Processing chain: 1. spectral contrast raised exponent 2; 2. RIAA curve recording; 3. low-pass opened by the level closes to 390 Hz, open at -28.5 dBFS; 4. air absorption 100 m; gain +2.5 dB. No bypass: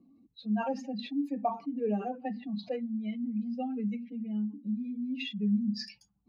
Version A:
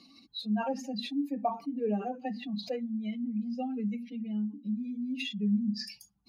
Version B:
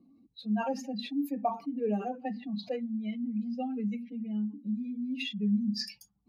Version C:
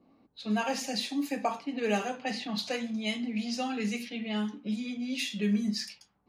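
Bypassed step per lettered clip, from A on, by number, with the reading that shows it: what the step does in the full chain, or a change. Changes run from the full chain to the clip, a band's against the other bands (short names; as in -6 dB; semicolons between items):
3, 4 kHz band +3.5 dB; 4, 4 kHz band +3.0 dB; 1, 2 kHz band +8.5 dB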